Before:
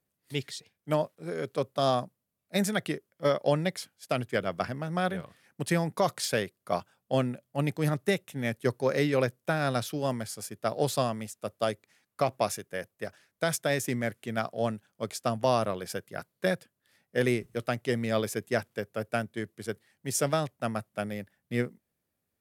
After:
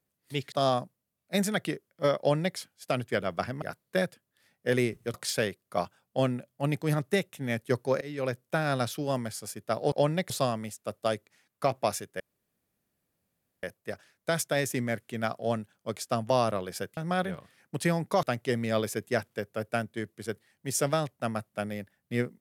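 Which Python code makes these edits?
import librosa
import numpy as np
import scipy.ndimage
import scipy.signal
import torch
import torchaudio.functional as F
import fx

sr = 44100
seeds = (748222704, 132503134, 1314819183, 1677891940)

y = fx.edit(x, sr, fx.cut(start_s=0.52, length_s=1.21),
    fx.duplicate(start_s=3.4, length_s=0.38, to_s=10.87),
    fx.swap(start_s=4.83, length_s=1.26, other_s=16.11, other_length_s=1.52),
    fx.fade_in_from(start_s=8.96, length_s=0.45, floor_db=-23.0),
    fx.insert_room_tone(at_s=12.77, length_s=1.43), tone=tone)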